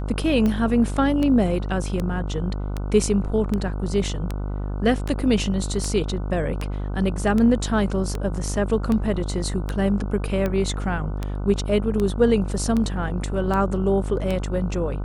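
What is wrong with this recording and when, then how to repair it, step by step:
buzz 50 Hz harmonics 30 -27 dBFS
tick 78 rpm -13 dBFS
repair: de-click; de-hum 50 Hz, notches 30

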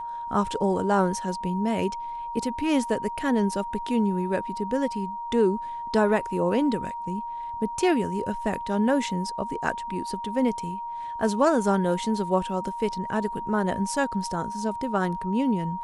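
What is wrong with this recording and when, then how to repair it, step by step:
tone 940 Hz -31 dBFS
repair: notch 940 Hz, Q 30

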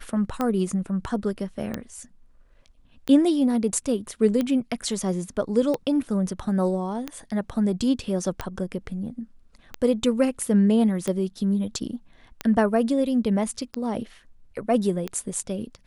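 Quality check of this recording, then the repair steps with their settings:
tick 45 rpm -13 dBFS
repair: de-click

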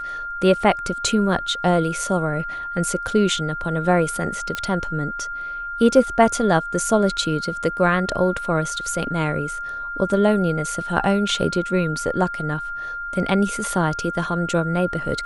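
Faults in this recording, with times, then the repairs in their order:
tone 1400 Hz -27 dBFS
4.55 pop -11 dBFS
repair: de-click; notch 1400 Hz, Q 30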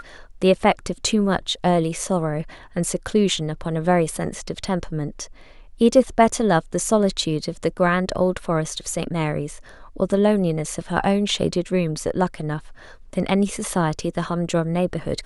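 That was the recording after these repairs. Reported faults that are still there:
none

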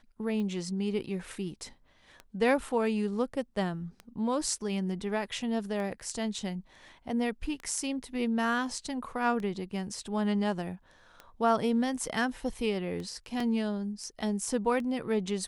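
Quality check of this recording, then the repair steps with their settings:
tick 33 1/3 rpm -27 dBFS
13.4 gap 3.7 ms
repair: de-click; interpolate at 13.4, 3.7 ms

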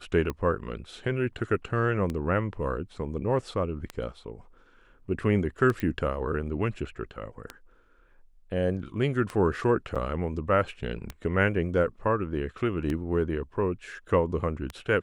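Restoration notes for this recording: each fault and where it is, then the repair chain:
tick 33 1/3 rpm -18 dBFS
5.8 pop -18 dBFS
9.95–9.96 gap 6.3 ms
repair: de-click; interpolate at 9.95, 6.3 ms

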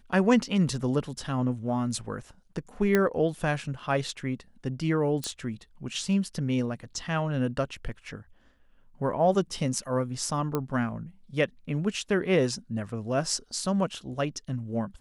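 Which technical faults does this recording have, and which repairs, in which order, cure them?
2.95 pop -10 dBFS
5.24 pop -17 dBFS
10.55 pop -15 dBFS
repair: de-click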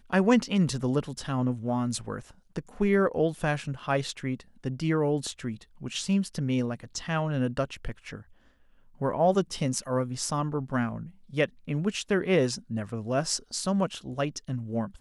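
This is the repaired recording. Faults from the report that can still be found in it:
10.55 pop

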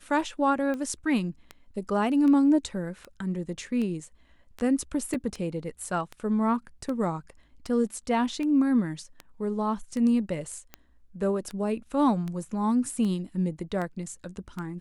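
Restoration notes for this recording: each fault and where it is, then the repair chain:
tick 78 rpm -22 dBFS
5.14 gap 3.8 ms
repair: de-click; interpolate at 5.14, 3.8 ms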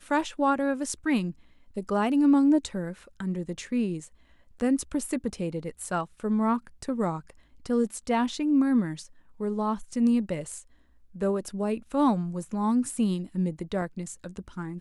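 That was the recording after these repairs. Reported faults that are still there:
none

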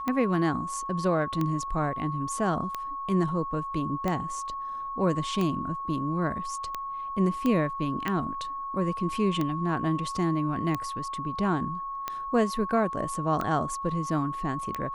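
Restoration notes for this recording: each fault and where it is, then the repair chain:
tick 45 rpm -16 dBFS
tone 1100 Hz -32 dBFS
7.46 pop -16 dBFS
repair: de-click; notch 1100 Hz, Q 30

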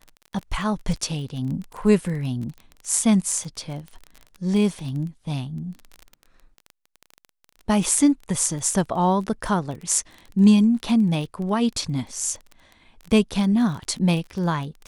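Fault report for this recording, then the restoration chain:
crackle 21/s -30 dBFS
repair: de-click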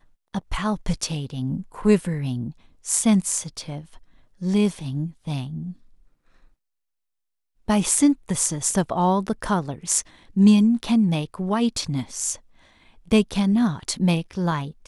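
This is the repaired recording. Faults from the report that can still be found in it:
none

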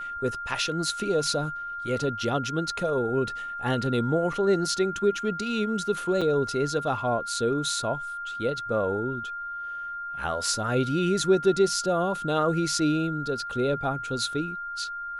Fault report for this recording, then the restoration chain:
tone 1400 Hz -32 dBFS
6.21–6.22 gap 5.8 ms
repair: notch 1400 Hz, Q 30; interpolate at 6.21, 5.8 ms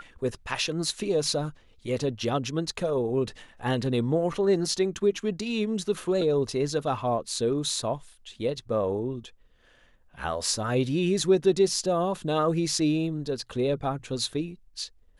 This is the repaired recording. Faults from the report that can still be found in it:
none

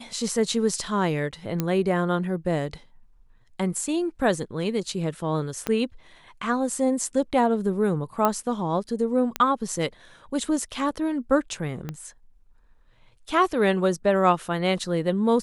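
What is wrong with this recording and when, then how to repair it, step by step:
1.6 pop -11 dBFS
5.67 pop -12 dBFS
8.25 pop -8 dBFS
9.36 pop -9 dBFS
11.89 pop -18 dBFS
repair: de-click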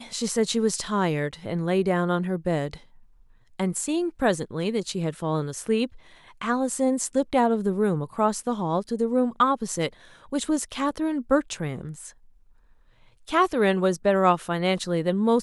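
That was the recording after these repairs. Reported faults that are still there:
5.67 pop
11.89 pop

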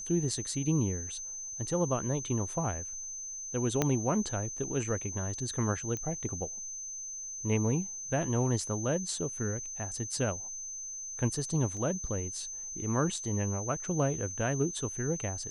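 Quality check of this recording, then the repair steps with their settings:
tone 6200 Hz -38 dBFS
3.82 pop -12 dBFS
5.97 pop -23 dBFS
11.77 gap 2.3 ms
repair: de-click; notch 6200 Hz, Q 30; interpolate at 11.77, 2.3 ms

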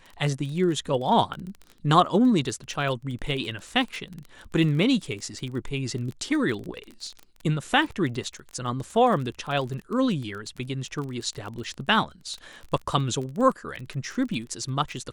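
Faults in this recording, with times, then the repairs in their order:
crackle 27/s -32 dBFS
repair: de-click

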